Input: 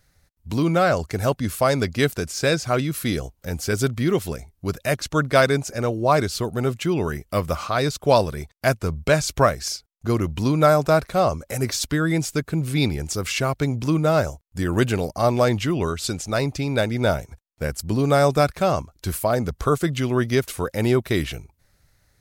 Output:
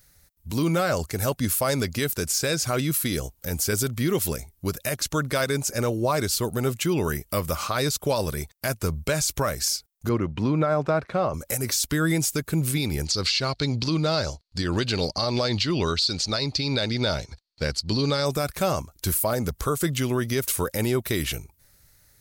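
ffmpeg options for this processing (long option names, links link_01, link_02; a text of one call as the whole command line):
ffmpeg -i in.wav -filter_complex "[0:a]asettb=1/sr,asplit=3[link_01][link_02][link_03];[link_01]atrim=end=10.094[link_04];[link_02]atrim=start=10.09:end=11.34,asetpts=PTS-STARTPTS,afade=type=in:duration=0.004:curve=qsin,afade=type=out:start_time=1.246:duration=0.004:curve=qsin,highpass=100,lowpass=2300[link_05];[link_03]atrim=start=11.336[link_06];[link_04][link_05]acrossfade=duration=0.004:curve1=hsin:curve2=qsin[link_07];[link_07][link_06]acrossfade=duration=0.004:curve1=qsin:curve2=hsin,asettb=1/sr,asplit=3[link_08][link_09][link_10];[link_08]atrim=end=13.054[link_11];[link_09]atrim=start=13.05:end=18.26,asetpts=PTS-STARTPTS,afade=type=in:duration=0.004:curve=qsin,afade=type=out:start_time=5.206:duration=0.004:curve=qsin,lowpass=frequency=4400:width_type=q:width=7.7[link_12];[link_10]atrim=start=18.256[link_13];[link_11][link_12]acrossfade=duration=0.004:curve1=hsin:curve2=qsin[link_14];[link_14][link_13]acrossfade=duration=0.004:curve1=qsin:curve2=hsin,aemphasis=mode=production:type=50kf,bandreject=frequency=700:width=12,alimiter=limit=-14dB:level=0:latency=1:release=110" out.wav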